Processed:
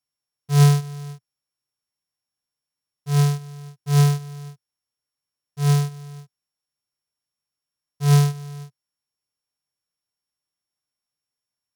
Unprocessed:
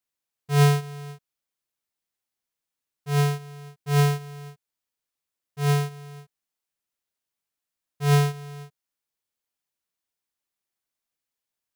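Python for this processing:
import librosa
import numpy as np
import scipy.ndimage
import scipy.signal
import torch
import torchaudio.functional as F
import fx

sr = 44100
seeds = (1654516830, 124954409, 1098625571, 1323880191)

y = np.r_[np.sort(x[:len(x) // 8 * 8].reshape(-1, 8), axis=1).ravel(), x[len(x) // 8 * 8:]]
y = fx.graphic_eq(y, sr, hz=(125, 1000, 8000), db=(9, 3, 6))
y = y * librosa.db_to_amplitude(-3.0)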